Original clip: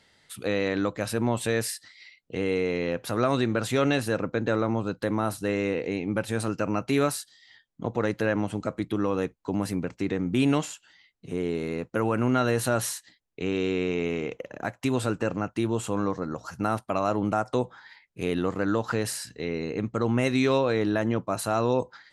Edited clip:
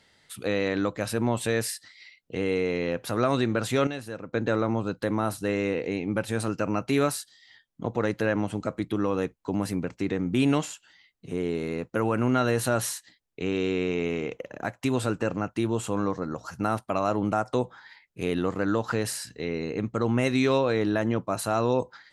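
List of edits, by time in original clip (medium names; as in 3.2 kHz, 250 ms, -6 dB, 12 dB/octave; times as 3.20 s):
3.87–4.33 s: gain -10 dB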